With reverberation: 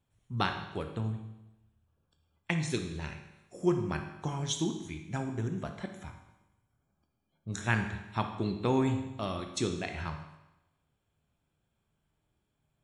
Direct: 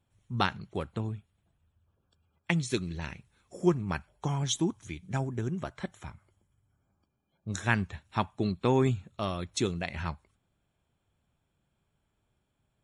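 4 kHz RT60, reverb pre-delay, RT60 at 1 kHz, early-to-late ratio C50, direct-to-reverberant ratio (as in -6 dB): 0.90 s, 19 ms, 0.95 s, 7.0 dB, 5.0 dB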